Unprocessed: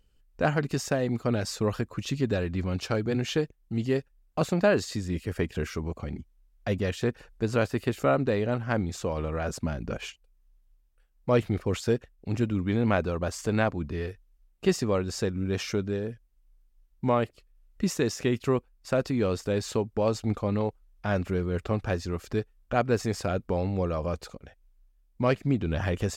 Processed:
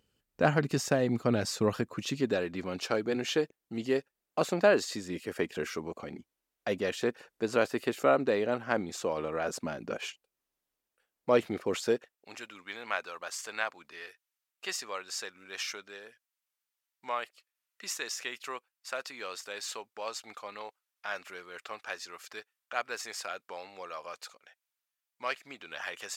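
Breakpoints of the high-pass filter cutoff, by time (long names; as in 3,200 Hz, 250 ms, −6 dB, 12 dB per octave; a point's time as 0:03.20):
0:01.60 130 Hz
0:02.46 300 Hz
0:11.87 300 Hz
0:12.42 1,200 Hz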